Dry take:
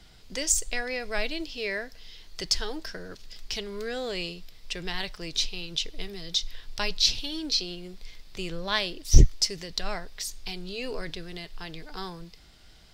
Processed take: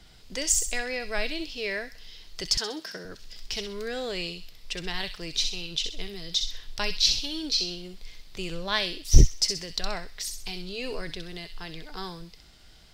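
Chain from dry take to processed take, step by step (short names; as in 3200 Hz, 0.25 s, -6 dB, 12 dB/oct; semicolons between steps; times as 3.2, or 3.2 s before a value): 2.57–3.05 HPF 150 Hz 24 dB/oct; on a send: thin delay 64 ms, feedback 37%, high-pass 2700 Hz, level -5 dB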